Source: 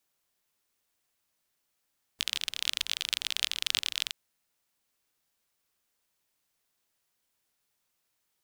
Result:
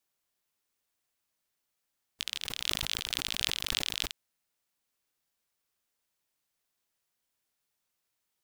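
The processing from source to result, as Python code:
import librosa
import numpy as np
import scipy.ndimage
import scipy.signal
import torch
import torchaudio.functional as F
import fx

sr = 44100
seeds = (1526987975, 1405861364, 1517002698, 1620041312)

y = fx.sustainer(x, sr, db_per_s=47.0, at=(2.41, 4.06))
y = F.gain(torch.from_numpy(y), -4.0).numpy()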